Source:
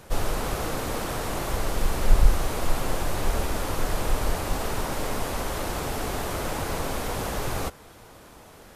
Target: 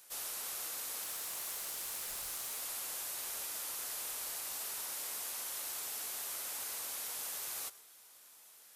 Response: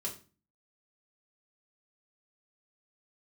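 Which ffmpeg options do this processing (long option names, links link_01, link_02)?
-filter_complex "[0:a]aderivative,asettb=1/sr,asplit=3[link_01][link_02][link_03];[link_01]atrim=end=1.034[link_04];[link_02]atrim=start=1.03:end=2.61,asetpts=PTS-STARTPTS,afade=type=in:duration=0.004:curve=qsin,afade=type=out:start_time=1.576:duration=0.004:curve=qsin,aeval=exprs='val(0)*gte(abs(val(0)),0.00668)':channel_layout=same[link_05];[link_03]atrim=start=2.606[link_06];[link_04][link_05]acrossfade=duration=0.004:curve1=hsin:curve2=qsin[link_07];[link_07][link_06]acrossfade=duration=0.004:curve1=qsin:curve2=hsin,asplit=2[link_08][link_09];[1:a]atrim=start_sample=2205,adelay=105[link_10];[link_09][link_10]afir=irnorm=-1:irlink=0,volume=-20dB[link_11];[link_08][link_11]amix=inputs=2:normalize=0,volume=-2.5dB"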